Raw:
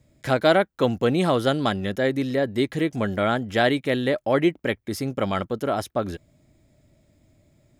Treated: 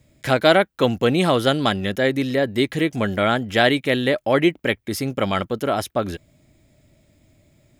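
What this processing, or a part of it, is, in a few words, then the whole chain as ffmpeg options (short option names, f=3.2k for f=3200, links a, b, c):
presence and air boost: -af "equalizer=f=2.7k:t=o:w=1.2:g=4.5,highshelf=f=9.7k:g=6.5,volume=2.5dB"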